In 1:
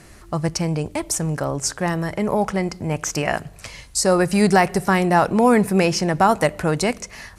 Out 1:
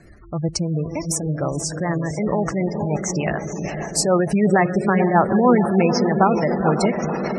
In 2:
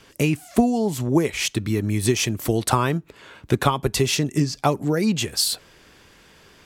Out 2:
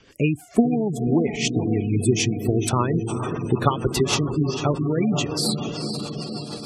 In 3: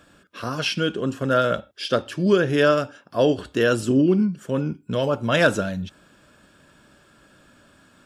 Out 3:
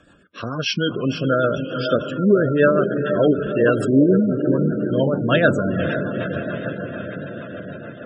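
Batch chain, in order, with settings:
diffused feedback echo 0.47 s, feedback 71%, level -6.5 dB; spectral gate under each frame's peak -20 dB strong; rotary speaker horn 6.7 Hz; normalise peaks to -2 dBFS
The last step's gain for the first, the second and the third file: +1.0, +0.5, +4.0 dB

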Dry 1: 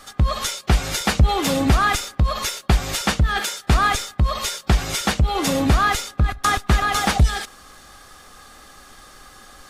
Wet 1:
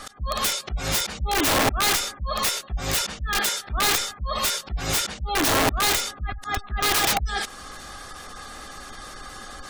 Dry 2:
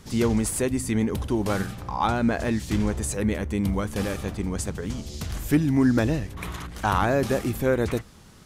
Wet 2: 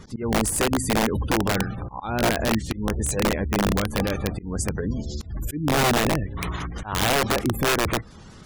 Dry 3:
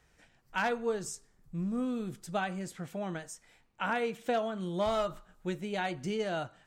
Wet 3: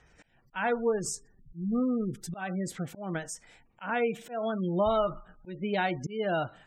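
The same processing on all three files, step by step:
spectral gate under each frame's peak -25 dB strong; in parallel at 0 dB: compressor 10:1, threshold -30 dBFS; on the sum: auto swell 0.203 s; wrapped overs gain 15 dB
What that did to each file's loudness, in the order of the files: -3.0, +1.5, +3.0 LU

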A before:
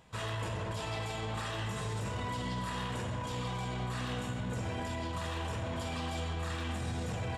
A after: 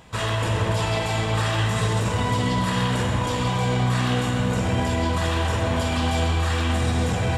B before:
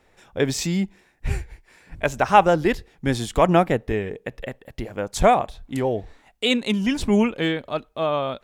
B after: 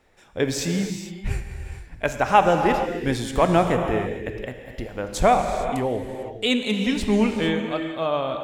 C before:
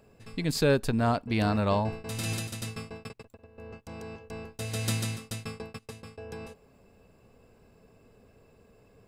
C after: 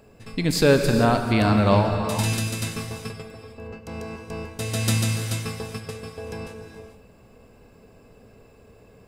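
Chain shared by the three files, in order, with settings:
non-linear reverb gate 0.48 s flat, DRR 4.5 dB; match loudness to -23 LUFS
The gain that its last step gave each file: +12.0, -2.0, +6.5 dB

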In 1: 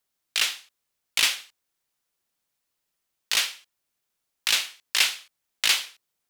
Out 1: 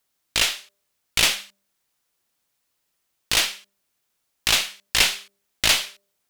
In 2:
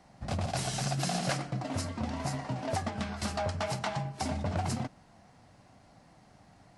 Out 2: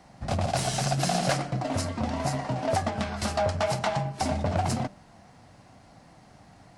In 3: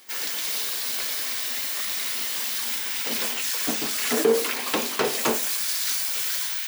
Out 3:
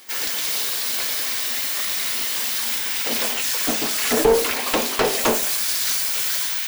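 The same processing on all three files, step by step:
one diode to ground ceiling -22.5 dBFS; dynamic EQ 640 Hz, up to +4 dB, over -45 dBFS, Q 1.9; de-hum 199.2 Hz, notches 3; gain +5.5 dB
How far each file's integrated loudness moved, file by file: +3.0, +5.5, +4.0 LU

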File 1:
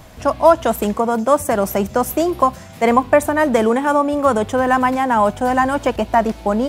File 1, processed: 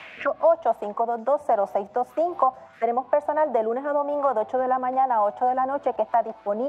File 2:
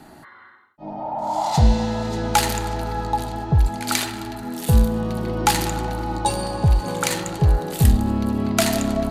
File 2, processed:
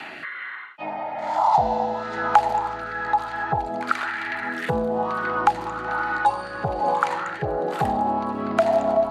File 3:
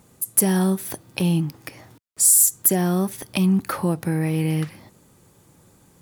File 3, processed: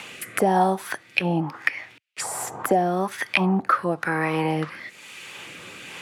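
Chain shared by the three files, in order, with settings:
rotary speaker horn 1.1 Hz; auto-wah 760–2700 Hz, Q 3.7, down, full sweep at -18 dBFS; three-band squash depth 70%; match loudness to -24 LUFS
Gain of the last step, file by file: +3.0, +13.0, +19.5 dB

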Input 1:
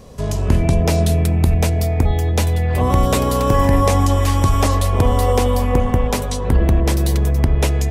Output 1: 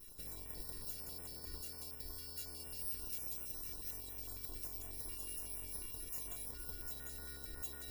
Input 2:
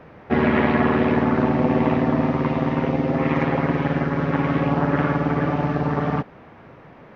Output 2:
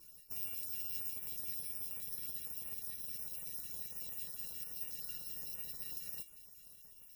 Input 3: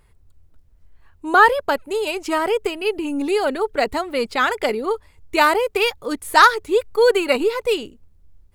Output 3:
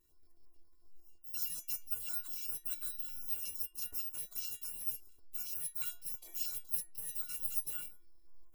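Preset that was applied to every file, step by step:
FFT order left unsorted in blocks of 128 samples; reverse; compressor 6:1, threshold -23 dBFS; reverse; small resonant body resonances 470/910/4000 Hz, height 12 dB, ringing for 40 ms; limiter -21.5 dBFS; high shelf 6200 Hz +4.5 dB; metallic resonator 340 Hz, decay 0.46 s, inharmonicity 0.008; harmonic-percussive split harmonic -12 dB; stepped notch 11 Hz 730–4600 Hz; gain +12 dB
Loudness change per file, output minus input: -26.5, -19.0, -18.0 LU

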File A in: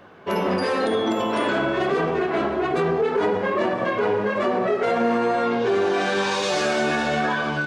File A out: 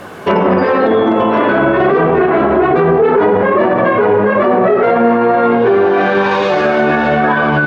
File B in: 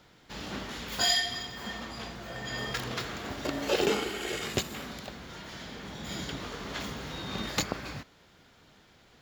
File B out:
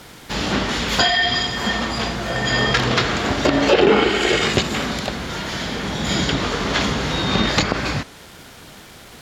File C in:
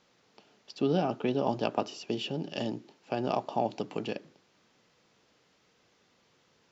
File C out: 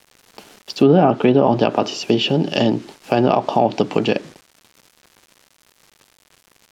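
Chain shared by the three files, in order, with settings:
bit-crush 10-bit; limiter -20 dBFS; treble ducked by the level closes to 1900 Hz, closed at -24.5 dBFS; normalise peaks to -3 dBFS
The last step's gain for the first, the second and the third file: +17.0, +17.0, +17.0 dB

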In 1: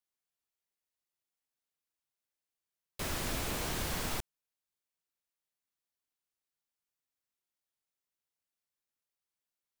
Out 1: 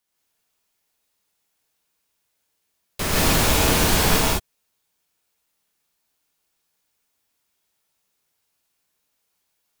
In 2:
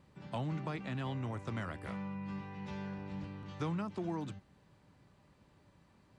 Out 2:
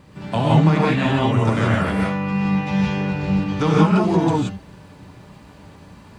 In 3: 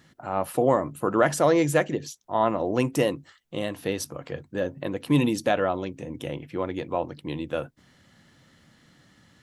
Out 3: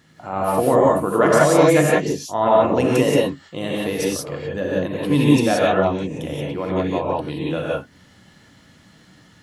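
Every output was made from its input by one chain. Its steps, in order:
non-linear reverb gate 0.2 s rising, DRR -5 dB; match loudness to -19 LUFS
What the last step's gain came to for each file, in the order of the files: +11.5, +15.5, +1.0 dB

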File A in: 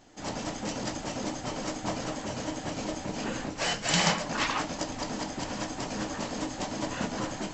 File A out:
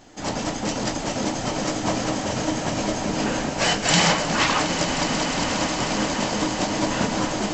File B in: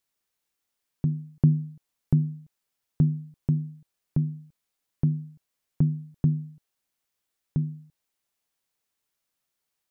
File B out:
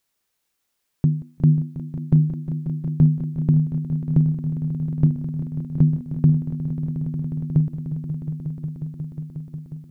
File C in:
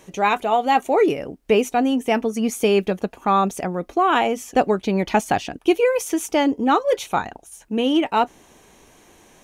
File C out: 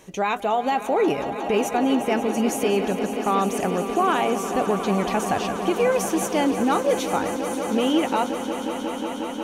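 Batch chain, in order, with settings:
limiter -13.5 dBFS; swelling echo 0.18 s, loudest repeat 5, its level -13 dB; match loudness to -23 LUFS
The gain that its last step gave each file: +8.0, +6.5, -0.5 dB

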